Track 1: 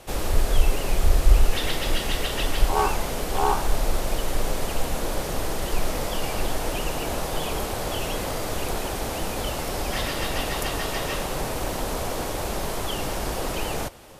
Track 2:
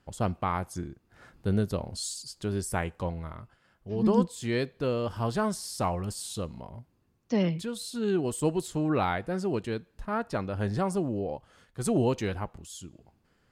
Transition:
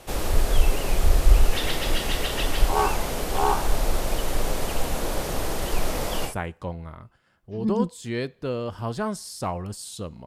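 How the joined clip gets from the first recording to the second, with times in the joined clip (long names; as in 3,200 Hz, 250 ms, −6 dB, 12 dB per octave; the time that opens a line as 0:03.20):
track 1
0:06.29: continue with track 2 from 0:02.67, crossfade 0.12 s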